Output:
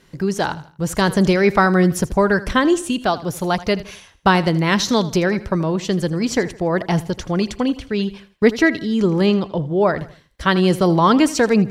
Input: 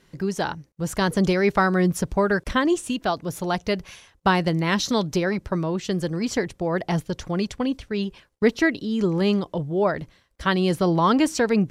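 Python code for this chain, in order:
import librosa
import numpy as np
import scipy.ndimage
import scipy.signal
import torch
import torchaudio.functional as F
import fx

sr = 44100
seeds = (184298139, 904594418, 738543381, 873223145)

y = fx.air_absorb(x, sr, metres=53.0, at=(9.26, 9.81))
y = fx.echo_feedback(y, sr, ms=81, feedback_pct=39, wet_db=-17)
y = F.gain(torch.from_numpy(y), 5.0).numpy()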